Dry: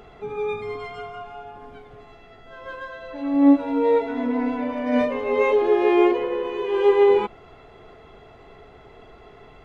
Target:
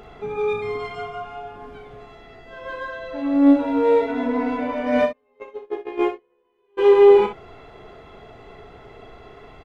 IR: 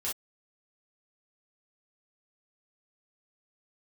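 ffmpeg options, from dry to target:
-filter_complex "[0:a]asplit=3[s0][s1][s2];[s0]afade=t=out:st=5.05:d=0.02[s3];[s1]agate=range=0.00794:threshold=0.2:ratio=16:detection=peak,afade=t=in:st=5.05:d=0.02,afade=t=out:st=6.77:d=0.02[s4];[s2]afade=t=in:st=6.77:d=0.02[s5];[s3][s4][s5]amix=inputs=3:normalize=0,asplit=2[s6][s7];[s7]asoftclip=type=hard:threshold=0.0794,volume=0.316[s8];[s6][s8]amix=inputs=2:normalize=0,aecho=1:1:35|62:0.422|0.335"

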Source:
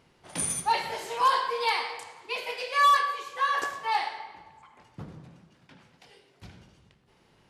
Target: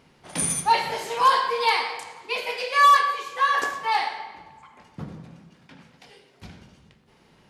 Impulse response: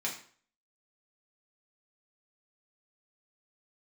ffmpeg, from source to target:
-filter_complex "[0:a]asplit=2[s0][s1];[1:a]atrim=start_sample=2205,lowshelf=f=290:g=10.5[s2];[s1][s2]afir=irnorm=-1:irlink=0,volume=0.224[s3];[s0][s3]amix=inputs=2:normalize=0,volume=1.41"

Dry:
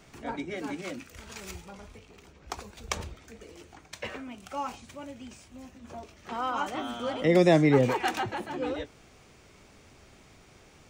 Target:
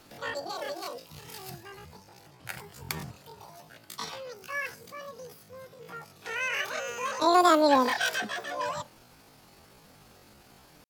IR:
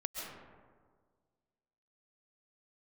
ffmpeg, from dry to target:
-af "asetrate=88200,aresample=44100,atempo=0.5" -ar 48000 -c:a libopus -b:a 256k

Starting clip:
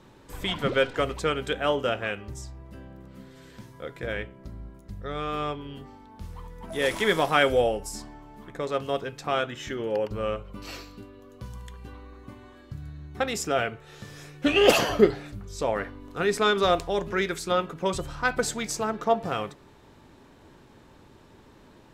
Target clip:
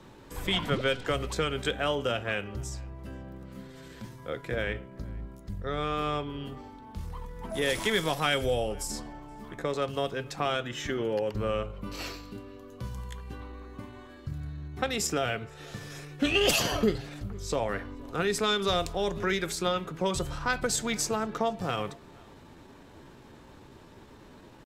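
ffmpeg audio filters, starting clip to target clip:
-filter_complex "[0:a]acrossover=split=170|3000[s0][s1][s2];[s1]acompressor=threshold=0.0355:ratio=4[s3];[s0][s3][s2]amix=inputs=3:normalize=0,atempo=0.89,asplit=2[s4][s5];[s5]adelay=472.3,volume=0.0562,highshelf=f=4000:g=-10.6[s6];[s4][s6]amix=inputs=2:normalize=0,volume=1.26"

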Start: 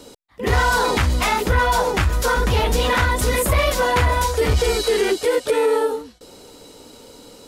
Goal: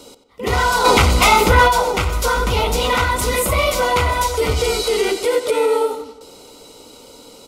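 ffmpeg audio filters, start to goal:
-filter_complex "[0:a]asuperstop=centerf=1700:order=4:qfactor=4.2,lowshelf=f=350:g=-5.5,asplit=2[s0][s1];[s1]adelay=92,lowpass=f=3900:p=1,volume=0.282,asplit=2[s2][s3];[s3]adelay=92,lowpass=f=3900:p=1,volume=0.53,asplit=2[s4][s5];[s5]adelay=92,lowpass=f=3900:p=1,volume=0.53,asplit=2[s6][s7];[s7]adelay=92,lowpass=f=3900:p=1,volume=0.53,asplit=2[s8][s9];[s9]adelay=92,lowpass=f=3900:p=1,volume=0.53,asplit=2[s10][s11];[s11]adelay=92,lowpass=f=3900:p=1,volume=0.53[s12];[s0][s2][s4][s6][s8][s10][s12]amix=inputs=7:normalize=0,asplit=3[s13][s14][s15];[s13]afade=t=out:st=0.84:d=0.02[s16];[s14]acontrast=68,afade=t=in:st=0.84:d=0.02,afade=t=out:st=1.67:d=0.02[s17];[s15]afade=t=in:st=1.67:d=0.02[s18];[s16][s17][s18]amix=inputs=3:normalize=0,volume=1.33"

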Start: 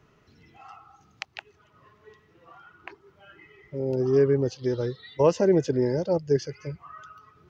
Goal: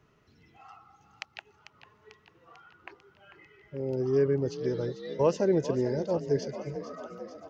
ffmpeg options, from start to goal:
-filter_complex "[0:a]asplit=8[s0][s1][s2][s3][s4][s5][s6][s7];[s1]adelay=445,afreqshift=36,volume=0.251[s8];[s2]adelay=890,afreqshift=72,volume=0.155[s9];[s3]adelay=1335,afreqshift=108,volume=0.0966[s10];[s4]adelay=1780,afreqshift=144,volume=0.0596[s11];[s5]adelay=2225,afreqshift=180,volume=0.0372[s12];[s6]adelay=2670,afreqshift=216,volume=0.0229[s13];[s7]adelay=3115,afreqshift=252,volume=0.0143[s14];[s0][s8][s9][s10][s11][s12][s13][s14]amix=inputs=8:normalize=0,volume=0.596"

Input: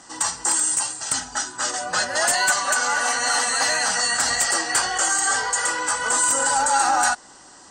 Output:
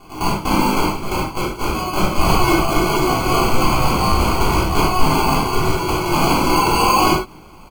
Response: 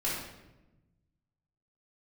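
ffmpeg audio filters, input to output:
-filter_complex "[0:a]acrusher=samples=24:mix=1:aa=0.000001,aecho=1:1:0.9:0.42[s0];[1:a]atrim=start_sample=2205,afade=t=out:st=0.16:d=0.01,atrim=end_sample=7497[s1];[s0][s1]afir=irnorm=-1:irlink=0,volume=0.794"

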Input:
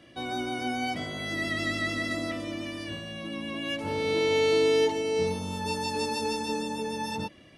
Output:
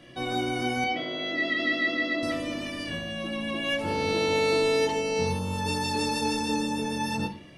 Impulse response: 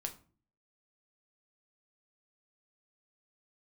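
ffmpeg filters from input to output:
-filter_complex "[0:a]asettb=1/sr,asplit=3[s0][s1][s2];[s0]atrim=end=0.844[s3];[s1]atrim=start=0.84:end=2.23,asetpts=PTS-STARTPTS,afade=t=in:d=0.004:c=qsin,afade=t=out:st=1.386:d=0.004:c=qsin,highpass=290,equalizer=f=310:t=q:w=4:g=4,equalizer=f=910:t=q:w=4:g=-5,equalizer=f=1500:t=q:w=4:g=-5,lowpass=f=4200:w=0.5412,lowpass=f=4200:w=1.3066[s4];[s2]atrim=start=2.226[s5];[s3][s4]acrossfade=d=0.004:c1=hsin:c2=qsin[s6];[s6][s5]acrossfade=d=0.004:c1=qsin:c2=hsin[s7];[1:a]atrim=start_sample=2205[s8];[s7][s8]afir=irnorm=-1:irlink=0,volume=1.78"

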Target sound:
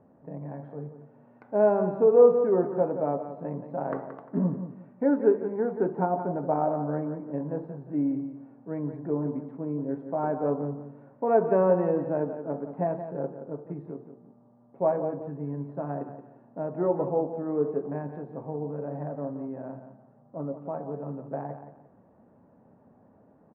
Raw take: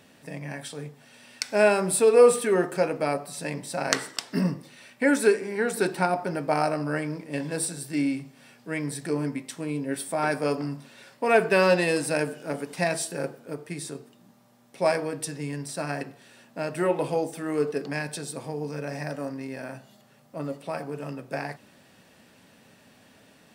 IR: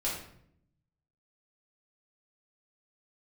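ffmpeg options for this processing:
-filter_complex "[0:a]lowpass=f=1000:w=0.5412,lowpass=f=1000:w=1.3066,asplit=2[s0][s1];[s1]aecho=0:1:175|350|525:0.316|0.0854|0.0231[s2];[s0][s2]amix=inputs=2:normalize=0,volume=0.891"

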